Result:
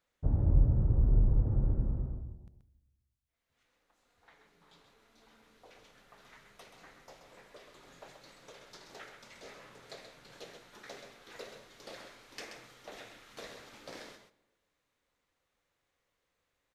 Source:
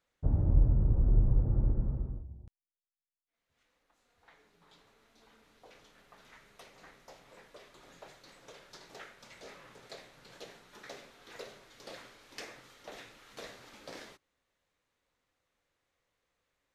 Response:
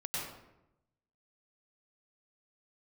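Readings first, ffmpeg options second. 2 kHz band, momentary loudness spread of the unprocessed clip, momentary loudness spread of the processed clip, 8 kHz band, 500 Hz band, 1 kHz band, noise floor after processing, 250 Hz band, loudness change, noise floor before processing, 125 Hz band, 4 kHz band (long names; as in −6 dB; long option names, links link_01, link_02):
0.0 dB, 22 LU, 22 LU, can't be measured, 0.0 dB, 0.0 dB, −83 dBFS, 0.0 dB, 0.0 dB, below −85 dBFS, 0.0 dB, 0.0 dB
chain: -filter_complex "[0:a]aecho=1:1:130:0.422,asplit=2[link_01][link_02];[1:a]atrim=start_sample=2205,asetrate=35280,aresample=44100[link_03];[link_02][link_03]afir=irnorm=-1:irlink=0,volume=-25dB[link_04];[link_01][link_04]amix=inputs=2:normalize=0,volume=-1dB"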